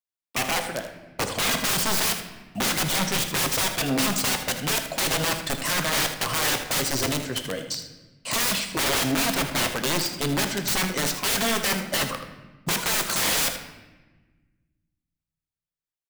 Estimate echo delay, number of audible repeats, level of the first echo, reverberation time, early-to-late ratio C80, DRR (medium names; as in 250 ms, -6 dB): 79 ms, 1, -11.0 dB, 1.2 s, 10.5 dB, 5.5 dB